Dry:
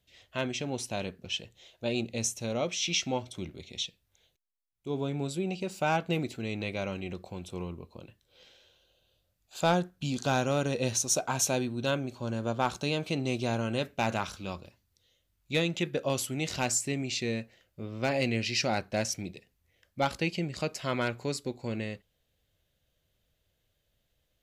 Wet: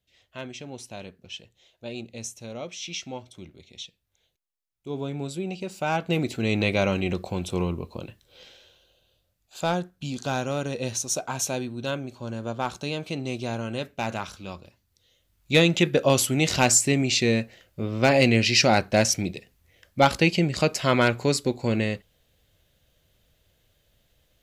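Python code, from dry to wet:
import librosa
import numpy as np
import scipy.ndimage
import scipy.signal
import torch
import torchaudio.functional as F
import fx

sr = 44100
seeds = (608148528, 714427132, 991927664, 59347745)

y = fx.gain(x, sr, db=fx.line((3.78, -5.0), (4.98, 1.0), (5.86, 1.0), (6.54, 11.0), (7.98, 11.0), (9.67, 0.0), (14.59, 0.0), (15.61, 10.0)))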